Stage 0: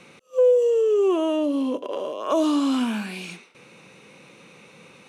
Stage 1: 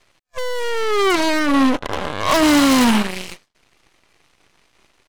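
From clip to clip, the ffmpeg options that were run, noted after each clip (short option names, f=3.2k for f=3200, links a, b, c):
-af "volume=21dB,asoftclip=hard,volume=-21dB,aecho=1:1:1:0.55,aeval=exprs='0.141*(cos(1*acos(clip(val(0)/0.141,-1,1)))-cos(1*PI/2))+0.0447*(cos(4*acos(clip(val(0)/0.141,-1,1)))-cos(4*PI/2))+0.0631*(cos(6*acos(clip(val(0)/0.141,-1,1)))-cos(6*PI/2))+0.02*(cos(7*acos(clip(val(0)/0.141,-1,1)))-cos(7*PI/2))+0.0112*(cos(8*acos(clip(val(0)/0.141,-1,1)))-cos(8*PI/2))':c=same,volume=8.5dB"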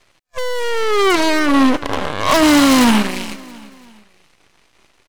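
-af "aecho=1:1:336|672|1008:0.112|0.0494|0.0217,volume=2.5dB"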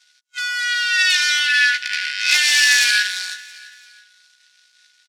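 -filter_complex "[0:a]afftfilt=real='real(if(lt(b,272),68*(eq(floor(b/68),0)*3+eq(floor(b/68),1)*0+eq(floor(b/68),2)*1+eq(floor(b/68),3)*2)+mod(b,68),b),0)':imag='imag(if(lt(b,272),68*(eq(floor(b/68),0)*3+eq(floor(b/68),1)*0+eq(floor(b/68),2)*1+eq(floor(b/68),3)*2)+mod(b,68),b),0)':win_size=2048:overlap=0.75,bandpass=f=5.9k:t=q:w=1:csg=0,asplit=2[a][b];[b]adelay=15,volume=-5.5dB[c];[a][c]amix=inputs=2:normalize=0,volume=3dB"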